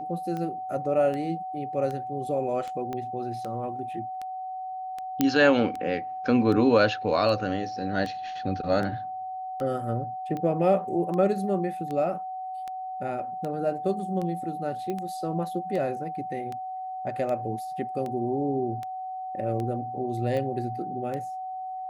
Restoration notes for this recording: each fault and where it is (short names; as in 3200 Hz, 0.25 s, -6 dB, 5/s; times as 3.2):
tick 78 rpm -22 dBFS
tone 750 Hz -32 dBFS
2.93 pop -21 dBFS
5.21 pop -8 dBFS
14.9 pop -20 dBFS